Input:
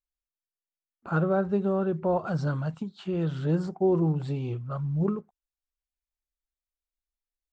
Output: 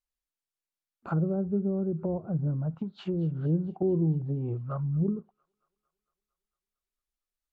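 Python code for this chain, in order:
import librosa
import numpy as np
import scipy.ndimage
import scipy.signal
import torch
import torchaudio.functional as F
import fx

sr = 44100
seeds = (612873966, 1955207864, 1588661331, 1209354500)

y = fx.env_lowpass_down(x, sr, base_hz=340.0, full_db=-25.0)
y = fx.echo_wet_highpass(y, sr, ms=227, feedback_pct=65, hz=1900.0, wet_db=-19)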